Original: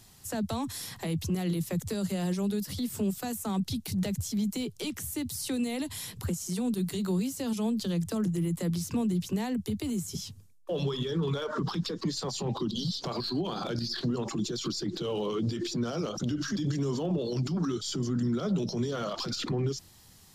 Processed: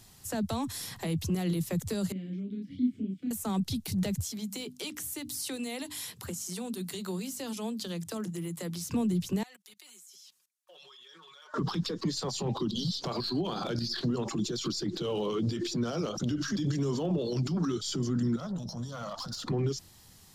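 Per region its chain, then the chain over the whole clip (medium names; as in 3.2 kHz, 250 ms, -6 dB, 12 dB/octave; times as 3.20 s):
2.12–3.31 s: vowel filter i + tilt EQ -3 dB/octave + doubling 32 ms -2 dB
4.25–8.90 s: high-pass 120 Hz 6 dB/octave + bass shelf 440 Hz -7 dB + hum notches 50/100/150/200/250/300 Hz
9.43–11.54 s: high-pass 1.3 kHz + comb 5.5 ms, depth 68% + level held to a coarse grid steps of 18 dB
18.36–19.48 s: static phaser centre 930 Hz, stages 4 + valve stage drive 29 dB, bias 0.35
whole clip: none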